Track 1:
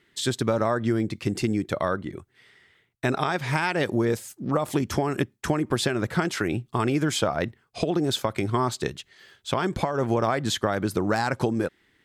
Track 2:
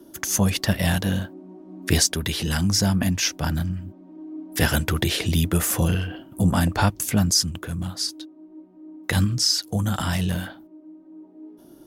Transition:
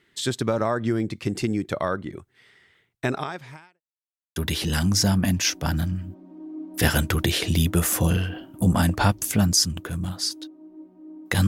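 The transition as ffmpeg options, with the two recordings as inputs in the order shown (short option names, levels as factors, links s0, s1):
-filter_complex "[0:a]apad=whole_dur=11.47,atrim=end=11.47,asplit=2[s0][s1];[s0]atrim=end=3.81,asetpts=PTS-STARTPTS,afade=t=out:st=3.06:d=0.75:c=qua[s2];[s1]atrim=start=3.81:end=4.36,asetpts=PTS-STARTPTS,volume=0[s3];[1:a]atrim=start=2.14:end=9.25,asetpts=PTS-STARTPTS,afade=t=in:d=0.004:c=hsin[s4];[s2][s3][s4]concat=n=3:v=0:a=1"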